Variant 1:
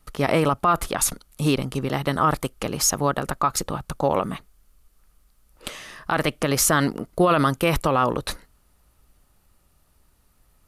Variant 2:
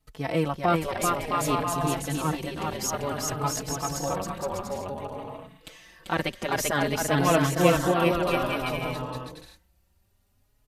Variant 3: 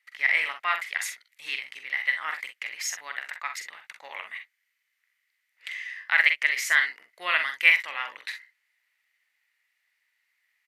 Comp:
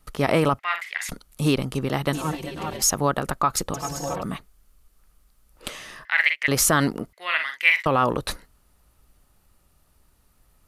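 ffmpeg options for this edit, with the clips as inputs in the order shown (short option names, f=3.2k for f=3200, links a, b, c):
-filter_complex "[2:a]asplit=3[a][b][c];[1:a]asplit=2[d][e];[0:a]asplit=6[f][g][h][i][j][k];[f]atrim=end=0.592[l];[a]atrim=start=0.588:end=1.092[m];[g]atrim=start=1.088:end=2.132[n];[d]atrim=start=2.128:end=2.822[o];[h]atrim=start=2.818:end=3.742[p];[e]atrim=start=3.738:end=4.232[q];[i]atrim=start=4.228:end=6.052[r];[b]atrim=start=6.048:end=6.482[s];[j]atrim=start=6.478:end=7.132[t];[c]atrim=start=7.128:end=7.862[u];[k]atrim=start=7.858[v];[l][m]acrossfade=d=0.004:c1=hsin:c2=hsin[w];[w][n]acrossfade=d=0.004:c1=hsin:c2=hsin[x];[x][o]acrossfade=d=0.004:c1=hsin:c2=hsin[y];[y][p]acrossfade=d=0.004:c1=hsin:c2=hsin[z];[z][q]acrossfade=d=0.004:c1=hsin:c2=hsin[aa];[aa][r]acrossfade=d=0.004:c1=hsin:c2=hsin[ab];[ab][s]acrossfade=d=0.004:c1=hsin:c2=hsin[ac];[ac][t]acrossfade=d=0.004:c1=hsin:c2=hsin[ad];[ad][u]acrossfade=d=0.004:c1=hsin:c2=hsin[ae];[ae][v]acrossfade=d=0.004:c1=hsin:c2=hsin"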